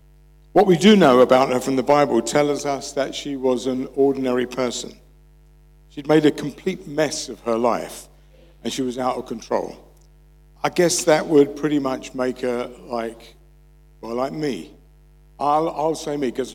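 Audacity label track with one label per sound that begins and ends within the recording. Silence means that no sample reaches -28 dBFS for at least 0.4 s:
0.550000	4.910000	sound
5.980000	8.010000	sound
8.650000	9.710000	sound
10.640000	13.110000	sound
14.030000	14.620000	sound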